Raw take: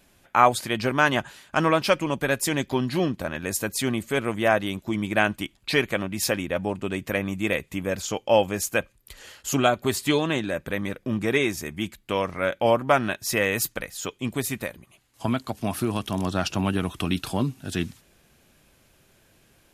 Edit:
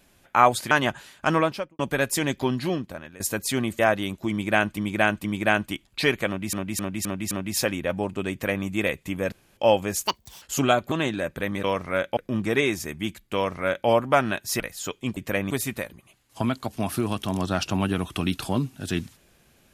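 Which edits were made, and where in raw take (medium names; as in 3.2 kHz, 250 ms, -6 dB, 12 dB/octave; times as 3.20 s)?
0.71–1.01 s: delete
1.64–2.09 s: studio fade out
2.81–3.50 s: fade out, to -18 dB
4.09–4.43 s: delete
4.95–5.42 s: loop, 3 plays
5.97–6.23 s: loop, 5 plays
6.97–7.31 s: copy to 14.35 s
7.98–8.23 s: room tone
8.73–9.37 s: speed 184%
9.87–10.22 s: delete
12.12–12.65 s: copy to 10.94 s
13.37–13.78 s: delete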